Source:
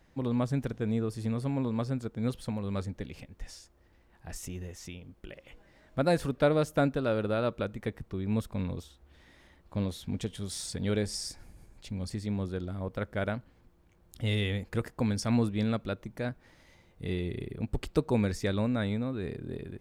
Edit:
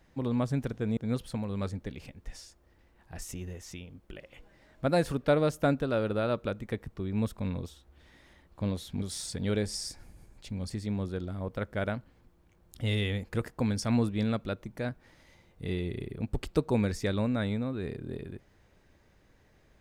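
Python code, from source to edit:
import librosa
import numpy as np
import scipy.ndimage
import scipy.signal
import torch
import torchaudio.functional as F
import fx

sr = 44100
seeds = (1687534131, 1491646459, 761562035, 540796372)

y = fx.edit(x, sr, fx.cut(start_s=0.97, length_s=1.14),
    fx.cut(start_s=10.16, length_s=0.26), tone=tone)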